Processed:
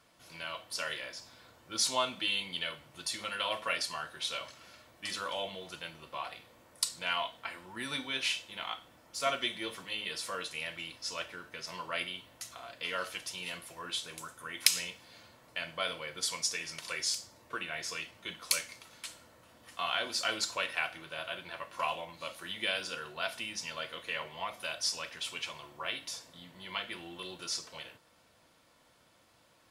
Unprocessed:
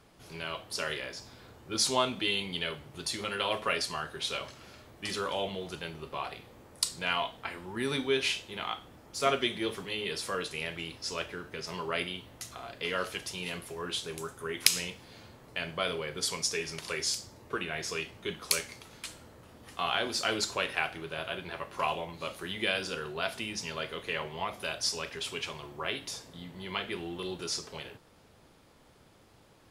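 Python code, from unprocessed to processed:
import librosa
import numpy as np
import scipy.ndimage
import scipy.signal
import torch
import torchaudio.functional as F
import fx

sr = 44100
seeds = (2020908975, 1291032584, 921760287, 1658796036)

y = fx.low_shelf(x, sr, hz=430.0, db=-11.5)
y = fx.notch_comb(y, sr, f0_hz=410.0)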